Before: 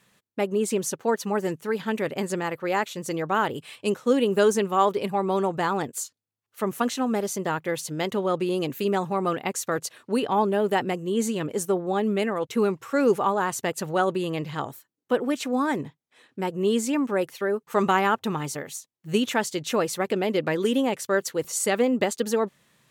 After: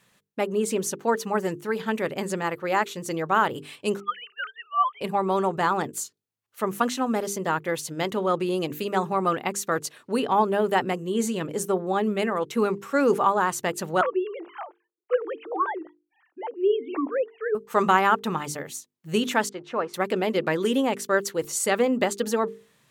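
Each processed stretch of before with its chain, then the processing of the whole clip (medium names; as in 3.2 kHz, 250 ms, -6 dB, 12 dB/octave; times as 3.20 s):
4.00–5.01 s: formants replaced by sine waves + steep high-pass 820 Hz 48 dB/octave
14.01–17.55 s: formants replaced by sine waves + band-pass filter 760 Hz, Q 0.53
19.49–19.94 s: companding laws mixed up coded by A + low-pass 1.2 kHz + tilt EQ +3.5 dB/octave
whole clip: dynamic bell 1.2 kHz, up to +4 dB, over -34 dBFS, Q 1.4; hum notches 50/100/150/200/250/300/350/400/450 Hz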